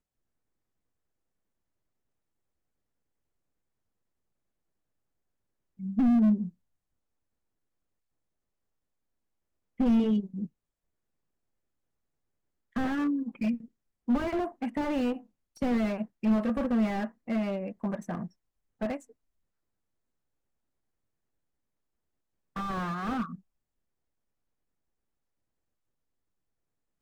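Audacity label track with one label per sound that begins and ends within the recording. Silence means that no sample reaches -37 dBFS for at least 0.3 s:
5.800000	6.490000	sound
9.800000	10.460000	sound
12.760000	13.560000	sound
14.080000	15.170000	sound
15.620000	18.260000	sound
18.810000	18.970000	sound
22.560000	23.350000	sound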